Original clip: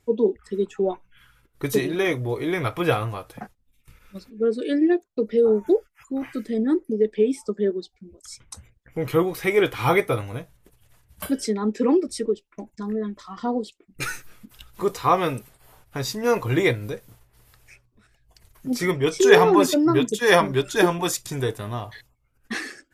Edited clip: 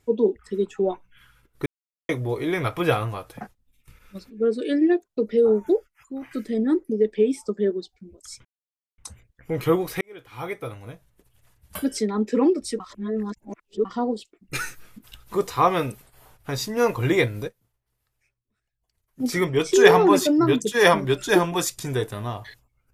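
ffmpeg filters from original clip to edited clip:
ffmpeg -i in.wav -filter_complex "[0:a]asplit=10[link_01][link_02][link_03][link_04][link_05][link_06][link_07][link_08][link_09][link_10];[link_01]atrim=end=1.66,asetpts=PTS-STARTPTS,afade=type=out:start_time=1.656:duration=0.004:curve=hsin[link_11];[link_02]atrim=start=1.66:end=2.09,asetpts=PTS-STARTPTS,volume=0[link_12];[link_03]atrim=start=2.09:end=6.31,asetpts=PTS-STARTPTS,afade=type=in:duration=0.004:curve=hsin,afade=type=out:start_time=3.43:duration=0.79:silence=0.398107[link_13];[link_04]atrim=start=6.31:end=8.45,asetpts=PTS-STARTPTS,afade=type=in:duration=0.004:curve=hsin:silence=0.398107,afade=type=out:start_time=2.136:duration=0.004:curve=hsin,apad=pad_dur=0.53[link_14];[link_05]atrim=start=8.45:end=9.48,asetpts=PTS-STARTPTS,afade=type=in:duration=0.004:curve=hsin,afade=type=out:start_time=1.026:duration=0.004:curve=hsin[link_15];[link_06]atrim=start=9.48:end=12.272,asetpts=PTS-STARTPTS,afade=type=in:duration=1.97[link_16];[link_07]atrim=start=12.268:end=13.322,asetpts=PTS-STARTPTS,areverse[link_17];[link_08]atrim=start=13.318:end=17.12,asetpts=PTS-STARTPTS,afade=type=out:start_time=3.622:duration=0.18:curve=exp:silence=0.0944061[link_18];[link_09]atrim=start=17.12:end=18.5,asetpts=PTS-STARTPTS,volume=-20.5dB[link_19];[link_10]atrim=start=18.5,asetpts=PTS-STARTPTS,afade=type=in:duration=0.18:curve=exp:silence=0.0944061[link_20];[link_11][link_12][link_13][link_14][link_15][link_16]concat=n=6:v=0:a=1[link_21];[link_21][link_17]acrossfade=duration=0.004:curve1=hsin:curve2=hsin[link_22];[link_18][link_19][link_20]concat=n=3:v=0:a=1[link_23];[link_22][link_23]acrossfade=duration=0.004:curve1=hsin:curve2=hsin" out.wav

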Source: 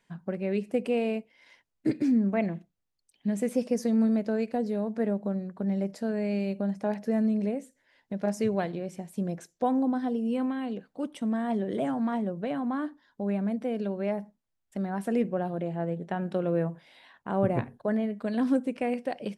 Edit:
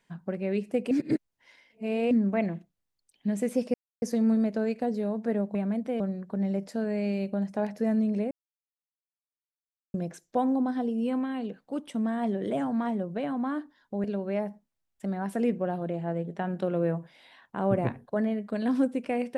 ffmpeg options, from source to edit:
ffmpeg -i in.wav -filter_complex "[0:a]asplit=9[link_01][link_02][link_03][link_04][link_05][link_06][link_07][link_08][link_09];[link_01]atrim=end=0.912[link_10];[link_02]atrim=start=0.908:end=2.112,asetpts=PTS-STARTPTS,areverse[link_11];[link_03]atrim=start=2.108:end=3.74,asetpts=PTS-STARTPTS,afade=type=out:start_time=1.628:duration=0.004:curve=hsin,apad=pad_dur=0.28[link_12];[link_04]atrim=start=3.74:end=5.272,asetpts=PTS-STARTPTS,afade=type=in:duration=0.004:curve=hsin[link_13];[link_05]atrim=start=13.308:end=13.762[link_14];[link_06]atrim=start=5.268:end=7.58,asetpts=PTS-STARTPTS,afade=type=out:start_time=2.308:duration=0.004:curve=hsin[link_15];[link_07]atrim=start=7.58:end=9.21,asetpts=PTS-STARTPTS,volume=0[link_16];[link_08]atrim=start=9.21:end=13.312,asetpts=PTS-STARTPTS,afade=type=in:duration=0.004:curve=hsin[link_17];[link_09]atrim=start=13.758[link_18];[link_10][link_11]acrossfade=duration=0.004:curve1=hsin:curve2=hsin[link_19];[link_12][link_13]concat=n=2:v=0:a=1[link_20];[link_19][link_20]acrossfade=duration=0.004:curve1=hsin:curve2=hsin[link_21];[link_21][link_14]acrossfade=duration=0.004:curve1=hsin:curve2=hsin[link_22];[link_15][link_16][link_17]concat=n=3:v=0:a=1[link_23];[link_22][link_23]acrossfade=duration=0.004:curve1=hsin:curve2=hsin[link_24];[link_24][link_18]acrossfade=duration=0.004:curve1=hsin:curve2=hsin" out.wav

